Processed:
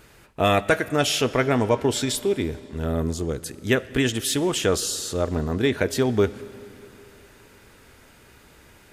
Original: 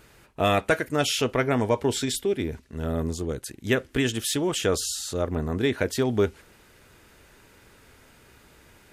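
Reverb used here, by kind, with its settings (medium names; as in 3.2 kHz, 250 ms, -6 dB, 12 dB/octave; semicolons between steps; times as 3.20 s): algorithmic reverb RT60 3.5 s, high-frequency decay 0.8×, pre-delay 15 ms, DRR 17 dB; trim +2.5 dB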